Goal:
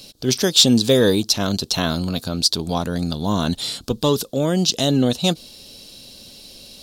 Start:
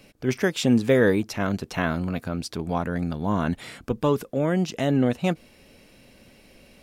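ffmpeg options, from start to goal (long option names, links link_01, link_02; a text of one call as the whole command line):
ffmpeg -i in.wav -af "highshelf=frequency=2900:width_type=q:width=3:gain=11,acontrast=24,volume=-1dB" out.wav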